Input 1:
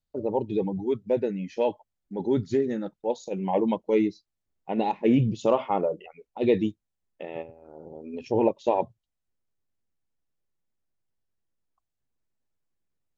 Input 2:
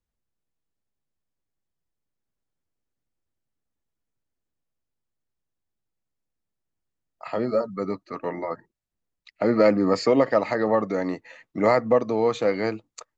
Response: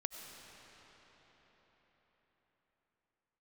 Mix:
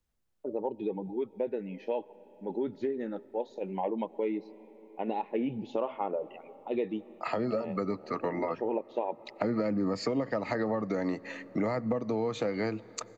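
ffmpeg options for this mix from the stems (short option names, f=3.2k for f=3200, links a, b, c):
-filter_complex "[0:a]acrossover=split=200 3600:gain=0.0891 1 0.0708[a][b][c];[a][b][c]amix=inputs=3:normalize=0,adelay=300,volume=-3.5dB,asplit=2[d][e];[e]volume=-16.5dB[f];[1:a]acrossover=split=250[g][h];[h]acompressor=threshold=-27dB:ratio=4[i];[g][i]amix=inputs=2:normalize=0,volume=3dB,asplit=2[j][k];[k]volume=-18.5dB[l];[2:a]atrim=start_sample=2205[m];[f][l]amix=inputs=2:normalize=0[n];[n][m]afir=irnorm=-1:irlink=0[o];[d][j][o]amix=inputs=3:normalize=0,acompressor=threshold=-29dB:ratio=3"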